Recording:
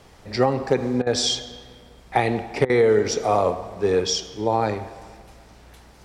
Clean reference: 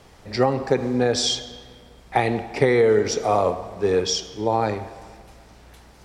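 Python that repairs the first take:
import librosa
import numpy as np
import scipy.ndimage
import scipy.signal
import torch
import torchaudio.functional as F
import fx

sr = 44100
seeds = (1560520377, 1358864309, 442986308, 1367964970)

y = fx.fix_declip(x, sr, threshold_db=-7.0)
y = fx.fix_interpolate(y, sr, at_s=(1.02, 2.65), length_ms=45.0)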